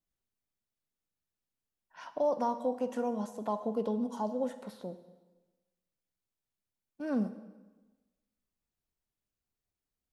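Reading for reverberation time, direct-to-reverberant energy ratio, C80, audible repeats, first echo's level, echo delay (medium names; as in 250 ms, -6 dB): 1.2 s, 12.0 dB, 14.5 dB, no echo, no echo, no echo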